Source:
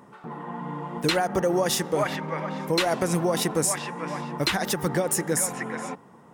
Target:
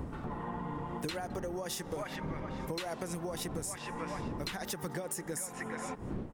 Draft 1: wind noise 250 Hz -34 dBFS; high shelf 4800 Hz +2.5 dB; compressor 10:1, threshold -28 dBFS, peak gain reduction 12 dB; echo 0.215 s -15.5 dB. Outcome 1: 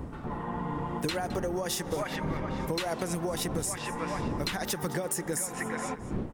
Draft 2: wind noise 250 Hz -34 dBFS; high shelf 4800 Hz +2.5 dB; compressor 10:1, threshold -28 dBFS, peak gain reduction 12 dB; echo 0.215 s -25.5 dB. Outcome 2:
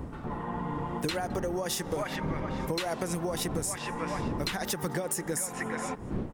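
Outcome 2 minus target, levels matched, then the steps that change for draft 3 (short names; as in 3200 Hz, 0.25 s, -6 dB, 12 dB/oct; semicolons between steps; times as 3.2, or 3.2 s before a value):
compressor: peak gain reduction -6.5 dB
change: compressor 10:1, threshold -35 dBFS, peak gain reduction 18.5 dB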